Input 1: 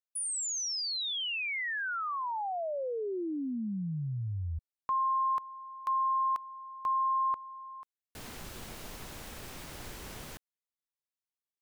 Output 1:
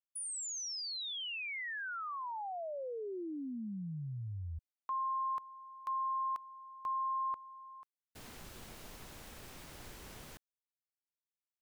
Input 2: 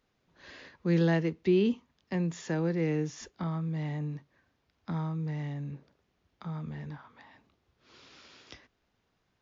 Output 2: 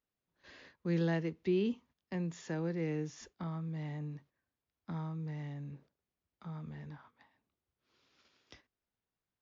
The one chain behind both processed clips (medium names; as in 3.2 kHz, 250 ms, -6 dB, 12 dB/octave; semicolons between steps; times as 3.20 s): gate -53 dBFS, range -11 dB; trim -6.5 dB